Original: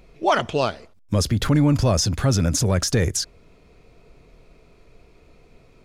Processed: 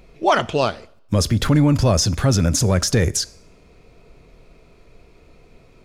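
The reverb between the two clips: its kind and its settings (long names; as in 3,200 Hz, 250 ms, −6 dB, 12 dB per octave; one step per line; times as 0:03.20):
coupled-rooms reverb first 0.61 s, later 1.8 s, from −24 dB, DRR 19 dB
level +2.5 dB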